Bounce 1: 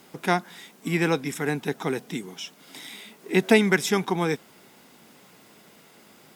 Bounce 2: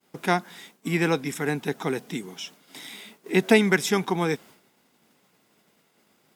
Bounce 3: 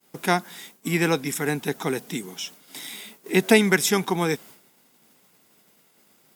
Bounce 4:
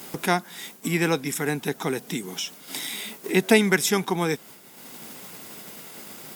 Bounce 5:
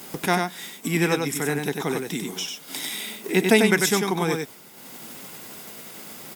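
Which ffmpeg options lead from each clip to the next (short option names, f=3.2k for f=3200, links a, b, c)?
-af "agate=range=-33dB:threshold=-44dB:ratio=3:detection=peak"
-af "highshelf=f=6.9k:g=10.5,volume=1dB"
-af "acompressor=mode=upward:threshold=-23dB:ratio=2.5,volume=-1dB"
-af "aecho=1:1:95:0.596"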